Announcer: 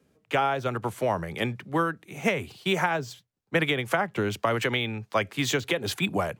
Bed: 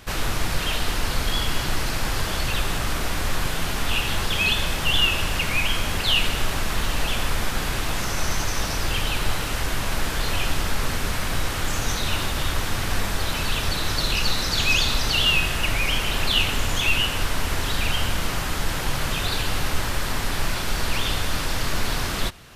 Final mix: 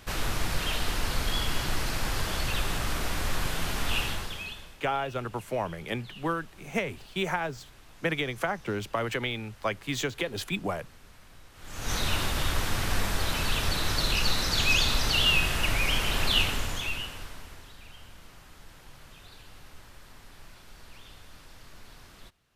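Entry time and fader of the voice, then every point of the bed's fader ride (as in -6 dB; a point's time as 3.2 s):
4.50 s, -4.5 dB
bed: 4.03 s -5 dB
4.82 s -28 dB
11.52 s -28 dB
11.94 s -3.5 dB
16.4 s -3.5 dB
17.76 s -25.5 dB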